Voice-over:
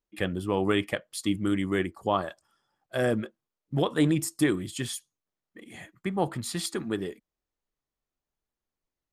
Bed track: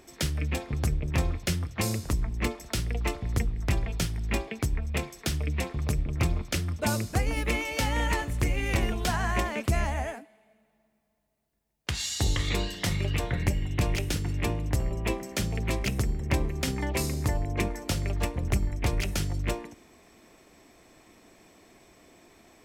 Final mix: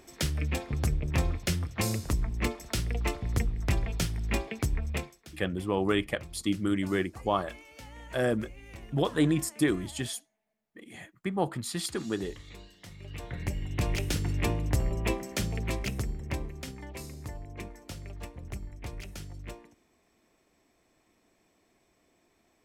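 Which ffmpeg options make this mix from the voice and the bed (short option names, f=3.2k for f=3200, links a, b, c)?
-filter_complex "[0:a]adelay=5200,volume=-1.5dB[a];[1:a]volume=19dB,afade=t=out:st=4.89:d=0.31:silence=0.112202,afade=t=in:st=12.97:d=1.26:silence=0.1,afade=t=out:st=15.01:d=1.77:silence=0.223872[b];[a][b]amix=inputs=2:normalize=0"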